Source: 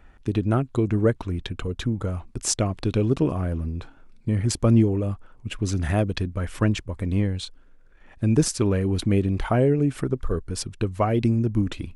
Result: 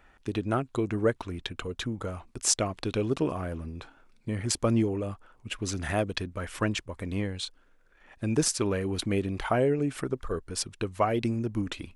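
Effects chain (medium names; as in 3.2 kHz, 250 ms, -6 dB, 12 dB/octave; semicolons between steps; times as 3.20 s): bass shelf 300 Hz -11.5 dB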